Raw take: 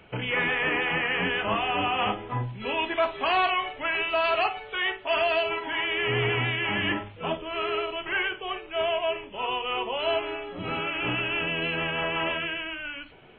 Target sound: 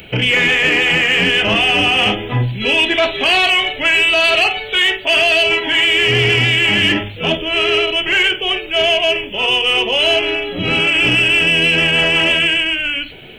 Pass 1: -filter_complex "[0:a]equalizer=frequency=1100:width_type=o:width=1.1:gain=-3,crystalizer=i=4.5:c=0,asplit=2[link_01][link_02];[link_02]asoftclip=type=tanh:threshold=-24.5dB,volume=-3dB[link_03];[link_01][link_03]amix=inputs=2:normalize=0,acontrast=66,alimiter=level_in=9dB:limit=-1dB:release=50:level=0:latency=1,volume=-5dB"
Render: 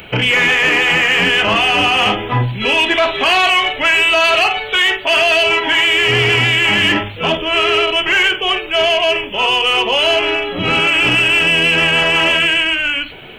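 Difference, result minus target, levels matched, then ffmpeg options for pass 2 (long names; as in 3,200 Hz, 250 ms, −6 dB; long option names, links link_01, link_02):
1,000 Hz band +4.5 dB
-filter_complex "[0:a]equalizer=frequency=1100:width_type=o:width=1.1:gain=-13,crystalizer=i=4.5:c=0,asplit=2[link_01][link_02];[link_02]asoftclip=type=tanh:threshold=-24.5dB,volume=-3dB[link_03];[link_01][link_03]amix=inputs=2:normalize=0,acontrast=66,alimiter=level_in=9dB:limit=-1dB:release=50:level=0:latency=1,volume=-5dB"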